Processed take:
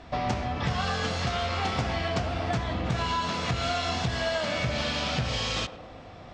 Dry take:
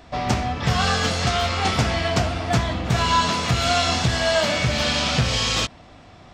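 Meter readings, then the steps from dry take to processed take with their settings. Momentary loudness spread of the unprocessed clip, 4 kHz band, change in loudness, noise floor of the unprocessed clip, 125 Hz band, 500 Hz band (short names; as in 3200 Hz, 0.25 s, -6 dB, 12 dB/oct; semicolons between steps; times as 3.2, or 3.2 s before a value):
4 LU, -9.0 dB, -8.0 dB, -46 dBFS, -7.5 dB, -6.5 dB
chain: compressor 4:1, threshold -26 dBFS, peak gain reduction 10 dB; air absorption 74 m; on a send: narrowing echo 0.109 s, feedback 77%, band-pass 600 Hz, level -10 dB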